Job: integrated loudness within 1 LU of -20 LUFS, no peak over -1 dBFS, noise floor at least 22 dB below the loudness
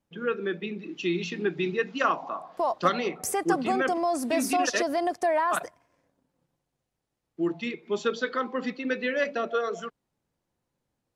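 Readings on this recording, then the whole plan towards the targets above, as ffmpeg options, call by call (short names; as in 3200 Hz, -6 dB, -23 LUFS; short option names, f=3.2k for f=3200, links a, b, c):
loudness -28.0 LUFS; peak -10.0 dBFS; loudness target -20.0 LUFS
-> -af "volume=8dB"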